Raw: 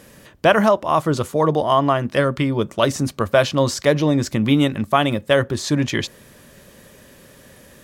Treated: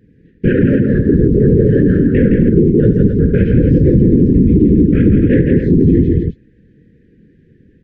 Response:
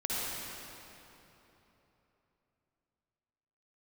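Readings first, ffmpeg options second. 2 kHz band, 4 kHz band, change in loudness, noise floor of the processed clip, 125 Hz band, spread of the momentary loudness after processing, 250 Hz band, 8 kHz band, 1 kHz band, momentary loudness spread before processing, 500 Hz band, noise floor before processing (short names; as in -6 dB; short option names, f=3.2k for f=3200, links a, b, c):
-4.5 dB, under -15 dB, +7.5 dB, -50 dBFS, +12.0 dB, 3 LU, +11.0 dB, under -30 dB, under -25 dB, 5 LU, +3.5 dB, -48 dBFS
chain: -af "afwtdn=0.0708,lowpass=1.2k,equalizer=f=140:w=0.46:g=7.5,acompressor=threshold=-13dB:ratio=6,flanger=delay=19.5:depth=7.4:speed=2,afftfilt=real='hypot(re,im)*cos(2*PI*random(0))':imag='hypot(re,im)*sin(2*PI*random(1))':win_size=512:overlap=0.75,asuperstop=centerf=880:order=12:qfactor=0.75,aecho=1:1:72|166|268:0.335|0.562|0.355,alimiter=level_in=20.5dB:limit=-1dB:release=50:level=0:latency=1,volume=-1dB"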